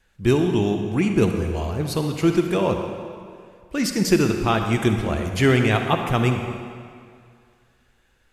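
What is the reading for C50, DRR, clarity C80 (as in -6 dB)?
5.0 dB, 4.5 dB, 6.0 dB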